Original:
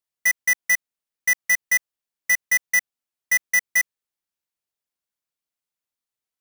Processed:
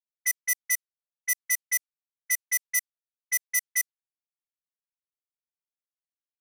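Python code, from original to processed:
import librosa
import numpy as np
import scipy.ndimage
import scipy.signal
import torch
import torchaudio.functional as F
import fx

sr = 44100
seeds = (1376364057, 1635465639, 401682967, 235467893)

y = fx.env_lowpass(x, sr, base_hz=400.0, full_db=-17.0)
y = scipy.signal.lfilter([1.0, -0.97], [1.0], y)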